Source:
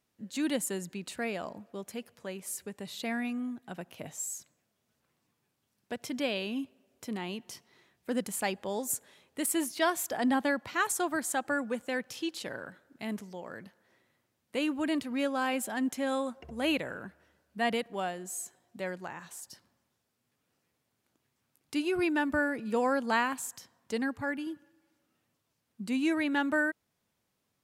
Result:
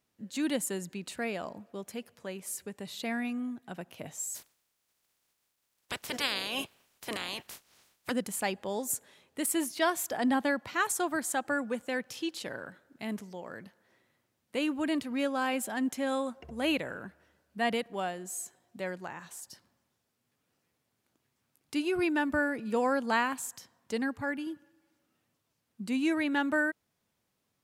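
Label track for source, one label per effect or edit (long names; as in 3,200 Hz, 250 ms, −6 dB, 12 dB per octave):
4.340000	8.100000	ceiling on every frequency bin ceiling under each frame's peak by 28 dB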